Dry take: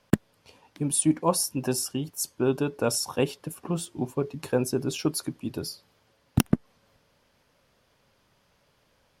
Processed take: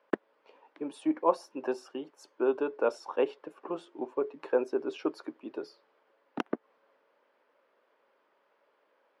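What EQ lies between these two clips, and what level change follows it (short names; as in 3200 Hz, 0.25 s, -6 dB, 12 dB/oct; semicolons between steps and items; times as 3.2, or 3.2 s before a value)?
HPF 350 Hz 24 dB/oct; LPF 1700 Hz 12 dB/oct; notch 730 Hz, Q 13; 0.0 dB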